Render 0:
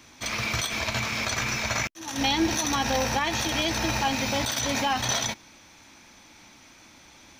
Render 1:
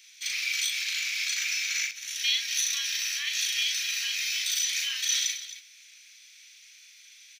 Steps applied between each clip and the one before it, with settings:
inverse Chebyshev high-pass filter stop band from 840 Hz, stop band 50 dB
on a send: loudspeakers that aren't time-aligned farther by 13 metres −3 dB, 92 metres −12 dB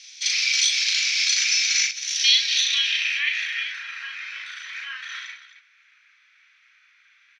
low-pass filter sweep 5,300 Hz → 1,400 Hz, 0:02.22–0:03.86
hard clipping −11 dBFS, distortion −53 dB
level +4.5 dB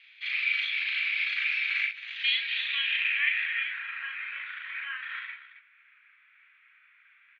inverse Chebyshev low-pass filter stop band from 5,300 Hz, stop band 40 dB
level −1 dB

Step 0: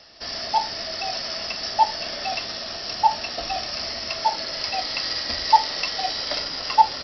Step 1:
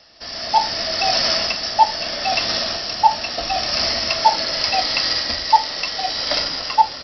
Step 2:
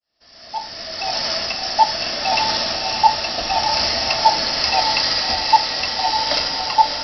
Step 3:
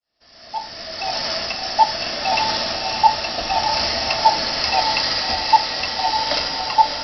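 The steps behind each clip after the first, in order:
notch filter 400 Hz, Q 13; automatic gain control gain up to 16.5 dB; level −1 dB
fade in at the beginning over 2.02 s; feedback delay with all-pass diffusion 583 ms, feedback 44%, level −5.5 dB
high-frequency loss of the air 53 metres

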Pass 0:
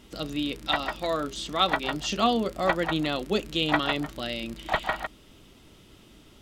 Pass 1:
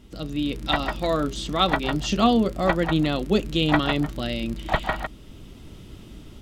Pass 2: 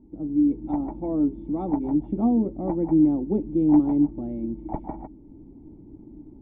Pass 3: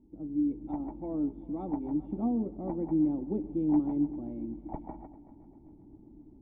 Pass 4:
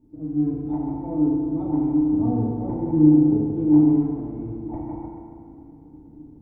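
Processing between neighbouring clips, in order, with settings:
low-shelf EQ 280 Hz +11.5 dB; automatic gain control gain up to 8 dB; level −4.5 dB
formant resonators in series u; level +7 dB
echo machine with several playback heads 132 ms, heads first and third, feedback 58%, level −19.5 dB; level −8.5 dB
sub-octave generator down 1 octave, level −4 dB; feedback delay network reverb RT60 2.3 s, low-frequency decay 0.8×, high-frequency decay 0.7×, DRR −4 dB

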